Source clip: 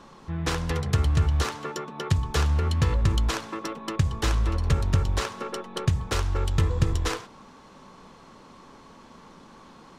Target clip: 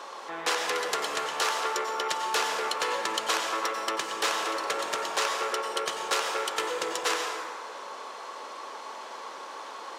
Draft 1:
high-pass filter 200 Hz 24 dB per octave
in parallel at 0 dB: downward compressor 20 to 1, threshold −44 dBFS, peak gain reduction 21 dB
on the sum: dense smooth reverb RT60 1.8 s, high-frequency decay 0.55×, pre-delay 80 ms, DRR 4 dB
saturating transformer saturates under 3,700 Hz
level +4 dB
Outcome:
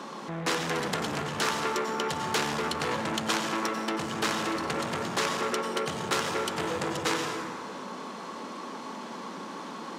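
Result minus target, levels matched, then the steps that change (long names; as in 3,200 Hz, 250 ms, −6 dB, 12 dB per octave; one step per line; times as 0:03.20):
250 Hz band +12.5 dB
change: high-pass filter 460 Hz 24 dB per octave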